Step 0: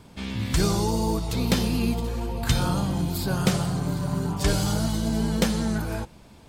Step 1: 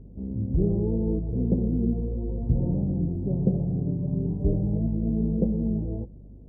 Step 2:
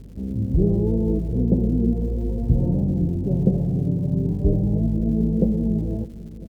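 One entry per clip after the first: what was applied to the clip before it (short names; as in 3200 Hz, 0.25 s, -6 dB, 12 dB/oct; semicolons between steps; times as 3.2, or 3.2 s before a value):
inverse Chebyshev low-pass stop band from 1300 Hz, stop band 50 dB; hum 50 Hz, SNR 21 dB
feedback echo 0.501 s, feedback 52%, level -18 dB; crackle 290/s -49 dBFS; gain +4.5 dB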